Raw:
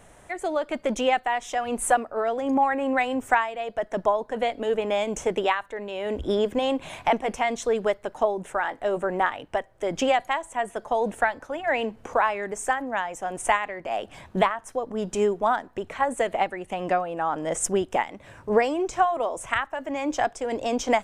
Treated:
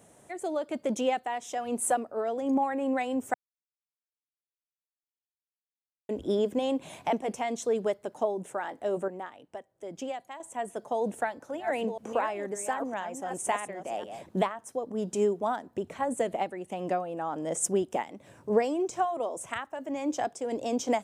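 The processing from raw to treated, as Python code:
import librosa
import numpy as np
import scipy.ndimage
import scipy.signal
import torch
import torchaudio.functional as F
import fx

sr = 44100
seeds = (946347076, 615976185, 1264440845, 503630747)

y = fx.reverse_delay(x, sr, ms=515, wet_db=-8, at=(10.95, 14.29))
y = fx.low_shelf(y, sr, hz=180.0, db=8.0, at=(15.66, 16.36))
y = fx.edit(y, sr, fx.silence(start_s=3.34, length_s=2.75),
    fx.clip_gain(start_s=9.08, length_s=1.32, db=-9.0), tone=tone)
y = scipy.signal.sosfilt(scipy.signal.butter(2, 160.0, 'highpass', fs=sr, output='sos'), y)
y = fx.peak_eq(y, sr, hz=1700.0, db=-11.0, octaves=2.8)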